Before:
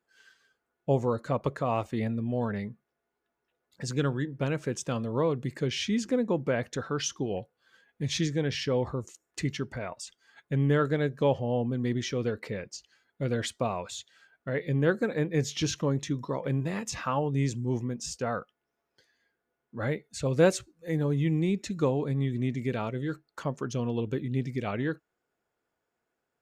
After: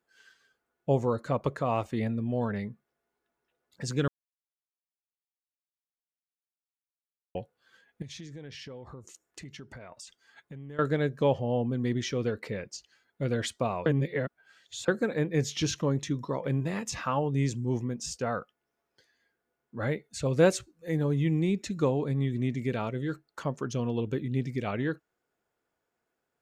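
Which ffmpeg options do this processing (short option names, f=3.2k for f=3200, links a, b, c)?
-filter_complex "[0:a]asettb=1/sr,asplit=3[a][b][c];[a]atrim=end=8.024[d];[b]atrim=start=8.02:end=10.79,asetpts=PTS-STARTPTS,afade=t=in:d=0.004:c=qsin,afade=t=out:st=2.766:d=0.004:c=qsin,acompressor=threshold=-42dB:ratio=5:attack=3.2:release=140:knee=1:detection=peak[e];[c]atrim=start=10.786[f];[d][e]acrossfade=d=0.004:c1=hsin:c2=qsin[g];[g][f]acrossfade=d=0.004:c1=qsin:c2=hsin,asplit=5[h][i][j][k][l];[h]atrim=end=4.08,asetpts=PTS-STARTPTS,afade=t=out:st=4.076:d=0.004:c=hsin[m];[i]atrim=start=4.08:end=7.35,asetpts=PTS-STARTPTS,volume=0[n];[j]atrim=start=7.35:end=13.862,asetpts=PTS-STARTPTS,afade=t=in:d=0.004:c=hsin[o];[k]atrim=start=13.858:end=14.882,asetpts=PTS-STARTPTS,areverse[p];[l]atrim=start=14.878[q];[m][n][o]concat=n=3:v=0:a=1[r];[r][p]acrossfade=d=0.004:c1=hsin:c2=hsin[s];[s][q]acrossfade=d=0.004:c1=hsin:c2=hsin"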